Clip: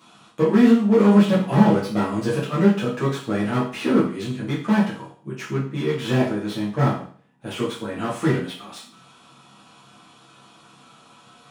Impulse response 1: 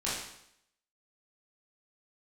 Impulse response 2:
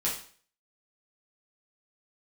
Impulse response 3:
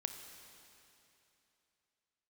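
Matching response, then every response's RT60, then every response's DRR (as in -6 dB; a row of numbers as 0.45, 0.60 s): 2; 0.75, 0.45, 3.0 s; -9.0, -7.5, 6.0 dB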